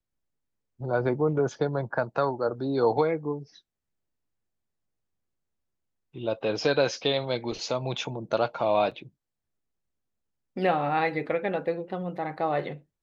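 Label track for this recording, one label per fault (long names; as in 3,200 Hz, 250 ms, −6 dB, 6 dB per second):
8.910000	8.910000	drop-out 4.9 ms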